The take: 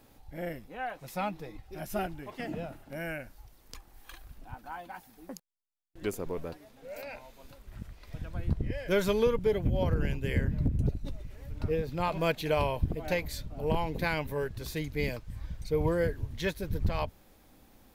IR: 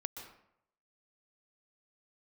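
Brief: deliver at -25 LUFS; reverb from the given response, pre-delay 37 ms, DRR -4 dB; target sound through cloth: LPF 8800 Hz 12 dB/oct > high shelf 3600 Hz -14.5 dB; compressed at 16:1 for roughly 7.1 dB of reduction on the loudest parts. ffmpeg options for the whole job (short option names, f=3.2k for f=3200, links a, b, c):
-filter_complex "[0:a]acompressor=threshold=-29dB:ratio=16,asplit=2[a][b];[1:a]atrim=start_sample=2205,adelay=37[c];[b][c]afir=irnorm=-1:irlink=0,volume=5dB[d];[a][d]amix=inputs=2:normalize=0,lowpass=8.8k,highshelf=f=3.6k:g=-14.5,volume=7.5dB"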